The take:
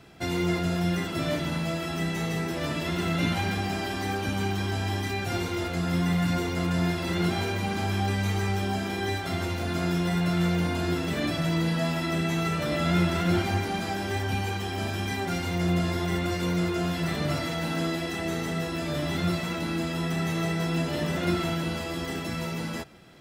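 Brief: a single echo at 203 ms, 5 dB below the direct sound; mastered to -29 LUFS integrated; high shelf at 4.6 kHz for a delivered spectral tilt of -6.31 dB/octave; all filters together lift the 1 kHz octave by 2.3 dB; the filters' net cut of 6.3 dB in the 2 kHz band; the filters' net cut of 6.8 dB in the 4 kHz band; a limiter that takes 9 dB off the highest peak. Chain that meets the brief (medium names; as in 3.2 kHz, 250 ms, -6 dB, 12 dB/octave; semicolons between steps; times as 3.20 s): peaking EQ 1 kHz +6 dB; peaking EQ 2 kHz -8 dB; peaking EQ 4 kHz -3 dB; treble shelf 4.6 kHz -6.5 dB; peak limiter -22.5 dBFS; delay 203 ms -5 dB; trim +1 dB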